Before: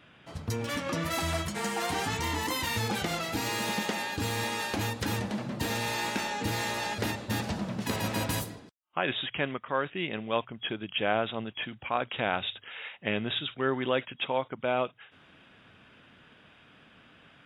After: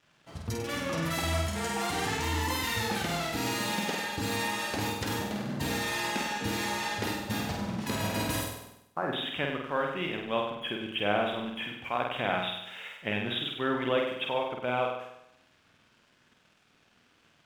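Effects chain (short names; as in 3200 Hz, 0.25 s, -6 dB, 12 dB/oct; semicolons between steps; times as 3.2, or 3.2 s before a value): 8.51–9.13 inverse Chebyshev low-pass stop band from 3800 Hz, stop band 50 dB; crossover distortion -56.5 dBFS; on a send: flutter echo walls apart 8.4 m, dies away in 0.82 s; on the sum: gain -2 dB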